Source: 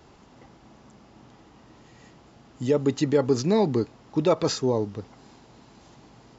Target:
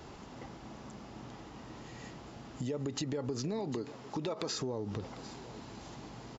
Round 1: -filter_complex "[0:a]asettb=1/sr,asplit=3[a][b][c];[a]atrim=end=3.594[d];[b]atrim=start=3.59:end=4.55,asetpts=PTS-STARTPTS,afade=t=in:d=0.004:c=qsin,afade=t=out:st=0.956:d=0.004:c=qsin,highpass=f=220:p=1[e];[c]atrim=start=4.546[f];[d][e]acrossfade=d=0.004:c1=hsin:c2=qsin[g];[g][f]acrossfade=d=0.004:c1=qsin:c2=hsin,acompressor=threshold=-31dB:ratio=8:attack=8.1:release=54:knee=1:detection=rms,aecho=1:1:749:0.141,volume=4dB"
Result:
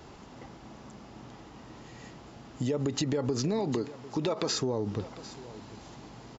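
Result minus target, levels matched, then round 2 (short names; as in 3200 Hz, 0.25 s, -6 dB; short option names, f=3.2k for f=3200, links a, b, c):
compressor: peak gain reduction -6.5 dB
-filter_complex "[0:a]asettb=1/sr,asplit=3[a][b][c];[a]atrim=end=3.594[d];[b]atrim=start=3.59:end=4.55,asetpts=PTS-STARTPTS,afade=t=in:d=0.004:c=qsin,afade=t=out:st=0.956:d=0.004:c=qsin,highpass=f=220:p=1[e];[c]atrim=start=4.546[f];[d][e]acrossfade=d=0.004:c1=hsin:c2=qsin[g];[g][f]acrossfade=d=0.004:c1=qsin:c2=hsin,acompressor=threshold=-38.5dB:ratio=8:attack=8.1:release=54:knee=1:detection=rms,aecho=1:1:749:0.141,volume=4dB"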